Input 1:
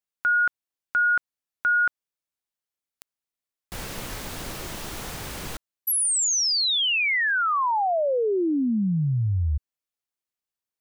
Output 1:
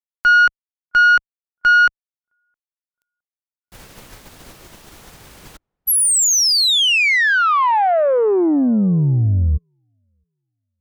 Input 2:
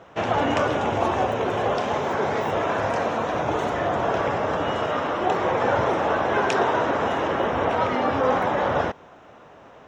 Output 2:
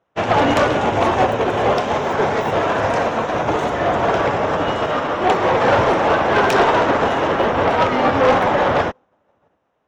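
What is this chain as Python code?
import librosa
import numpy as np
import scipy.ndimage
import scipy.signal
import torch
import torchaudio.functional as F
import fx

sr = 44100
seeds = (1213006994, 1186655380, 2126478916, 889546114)

y = fx.echo_filtered(x, sr, ms=664, feedback_pct=29, hz=980.0, wet_db=-20.5)
y = fx.cheby_harmonics(y, sr, harmonics=(5, 8), levels_db=(-11, -24), full_scale_db=-8.0)
y = fx.upward_expand(y, sr, threshold_db=-37.0, expansion=2.5)
y = y * librosa.db_to_amplitude(4.0)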